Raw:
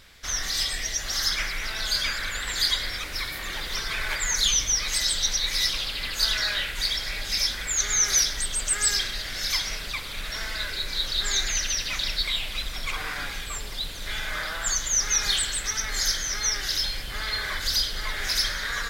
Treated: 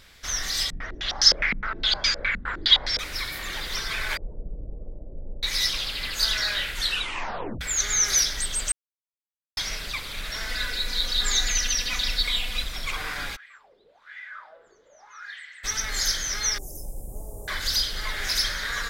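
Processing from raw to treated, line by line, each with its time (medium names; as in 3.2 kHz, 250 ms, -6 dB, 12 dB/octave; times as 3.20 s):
0.70–2.99 s: step-sequenced low-pass 9.7 Hz 210–5500 Hz
4.17–5.43 s: steep low-pass 580 Hz
6.77 s: tape stop 0.84 s
8.72–9.57 s: mute
10.49–12.64 s: comb 4.1 ms
13.35–15.63 s: wah-wah 1.8 Hz -> 0.49 Hz 410–2000 Hz, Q 9.8
16.58–17.48 s: inverse Chebyshev band-stop 1.4–4.4 kHz, stop band 50 dB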